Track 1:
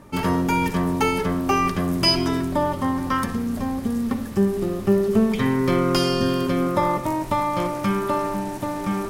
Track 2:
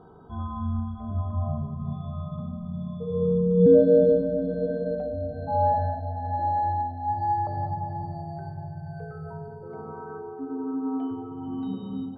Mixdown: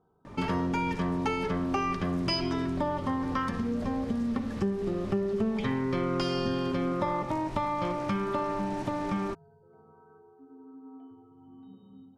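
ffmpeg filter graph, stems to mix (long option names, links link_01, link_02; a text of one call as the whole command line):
ffmpeg -i stem1.wav -i stem2.wav -filter_complex "[0:a]lowpass=5100,adelay=250,volume=0.5dB[link_01];[1:a]volume=-19dB[link_02];[link_01][link_02]amix=inputs=2:normalize=0,acompressor=threshold=-29dB:ratio=3" out.wav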